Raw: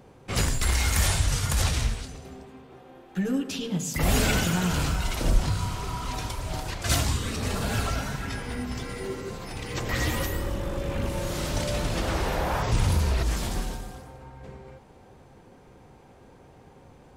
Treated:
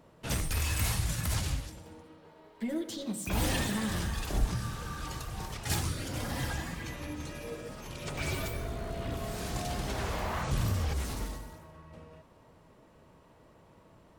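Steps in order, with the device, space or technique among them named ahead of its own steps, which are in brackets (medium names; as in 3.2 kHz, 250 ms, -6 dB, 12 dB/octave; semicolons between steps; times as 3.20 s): nightcore (tape speed +21%); trim -7 dB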